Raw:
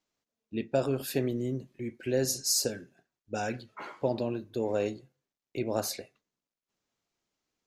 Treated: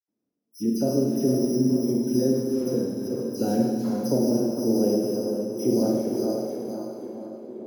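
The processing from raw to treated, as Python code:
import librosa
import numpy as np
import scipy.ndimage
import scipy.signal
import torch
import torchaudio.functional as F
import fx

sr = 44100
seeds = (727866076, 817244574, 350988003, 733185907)

y = fx.reverse_delay_fb(x, sr, ms=260, feedback_pct=47, wet_db=-8.5)
y = fx.highpass(y, sr, hz=170.0, slope=6)
y = fx.low_shelf(y, sr, hz=330.0, db=10.5)
y = fx.rider(y, sr, range_db=3, speed_s=0.5)
y = fx.filter_sweep_bandpass(y, sr, from_hz=260.0, to_hz=1800.0, start_s=5.97, end_s=7.33, q=1.5)
y = np.repeat(y[::8], 8)[:len(y)]
y = fx.dispersion(y, sr, late='lows', ms=82.0, hz=2900.0)
y = fx.echo_tape(y, sr, ms=456, feedback_pct=76, wet_db=-7.5, lp_hz=1300.0, drive_db=20.0, wow_cents=12)
y = fx.rev_schroeder(y, sr, rt60_s=1.6, comb_ms=31, drr_db=-0.5)
y = y * librosa.db_to_amplitude(6.5)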